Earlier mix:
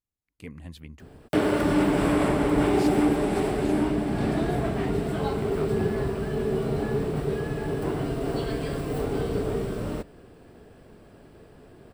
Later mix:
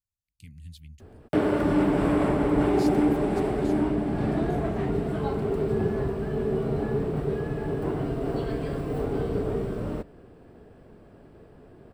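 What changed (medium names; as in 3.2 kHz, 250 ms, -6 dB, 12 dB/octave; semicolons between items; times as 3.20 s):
speech: add Chebyshev band-stop 120–4000 Hz, order 2; background: add treble shelf 2.4 kHz -10.5 dB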